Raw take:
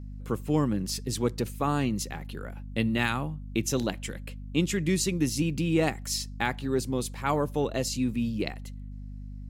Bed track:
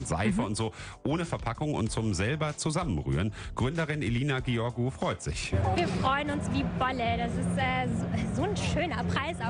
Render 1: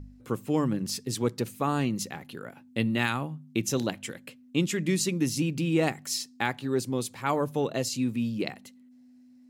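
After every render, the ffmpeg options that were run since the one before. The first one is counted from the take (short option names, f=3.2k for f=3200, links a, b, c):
-af "bandreject=f=50:t=h:w=4,bandreject=f=100:t=h:w=4,bandreject=f=150:t=h:w=4,bandreject=f=200:t=h:w=4"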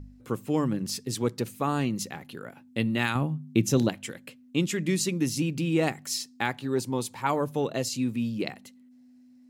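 -filter_complex "[0:a]asettb=1/sr,asplit=3[a][b][c];[a]atrim=end=3.154[d];[b]atrim=start=3.15:end=3.89,asetpts=PTS-STARTPTS,afade=t=in:d=0.004:c=qsin,afade=t=out:st=0.736:d=0.004:c=qsin,lowshelf=f=380:g=8.5[e];[c]atrim=start=3.886[f];[d][e]acrossfade=d=0.004:c1=hsin:c2=qsin[g];[g][f]acrossfade=d=0.004:c1=qsin:c2=hsin,asettb=1/sr,asplit=3[h][i][j];[h]atrim=end=6.774[k];[i]atrim=start=6.77:end=7.27,asetpts=PTS-STARTPTS,afade=t=in:d=0.004:c=qsin,afade=t=out:st=0.496:d=0.004:c=qsin,equalizer=f=910:t=o:w=0.22:g=12.5[l];[j]atrim=start=7.266[m];[k][l]acrossfade=d=0.004:c1=hsin:c2=qsin[n];[n][m]acrossfade=d=0.004:c1=qsin:c2=hsin"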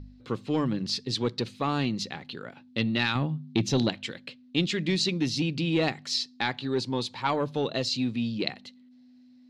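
-af "asoftclip=type=tanh:threshold=-15.5dB,lowpass=f=4.1k:t=q:w=3.4"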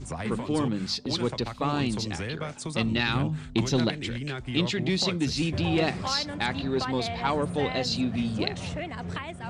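-filter_complex "[1:a]volume=-5dB[a];[0:a][a]amix=inputs=2:normalize=0"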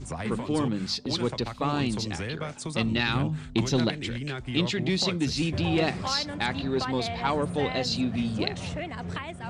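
-af anull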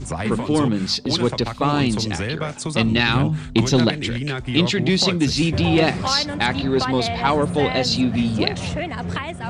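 -af "volume=8dB"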